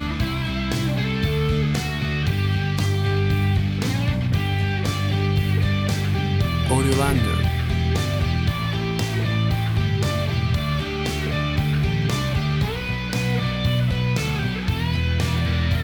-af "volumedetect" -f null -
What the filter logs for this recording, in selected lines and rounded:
mean_volume: -21.1 dB
max_volume: -6.1 dB